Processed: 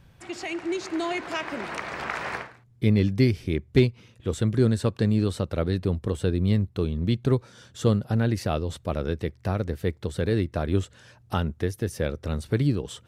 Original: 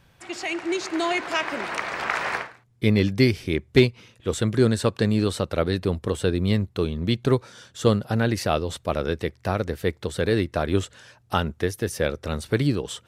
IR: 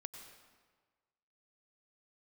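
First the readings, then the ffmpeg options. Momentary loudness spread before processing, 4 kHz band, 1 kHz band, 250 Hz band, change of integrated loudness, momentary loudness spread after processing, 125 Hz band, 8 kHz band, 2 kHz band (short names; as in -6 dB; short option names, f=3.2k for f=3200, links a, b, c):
8 LU, -6.5 dB, -5.5 dB, -1.5 dB, -2.0 dB, 10 LU, +1.0 dB, -6.0 dB, -6.0 dB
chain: -filter_complex "[0:a]lowshelf=f=320:g=9,asplit=2[a][b];[b]acompressor=threshold=-31dB:ratio=6,volume=-2dB[c];[a][c]amix=inputs=2:normalize=0,volume=-8dB"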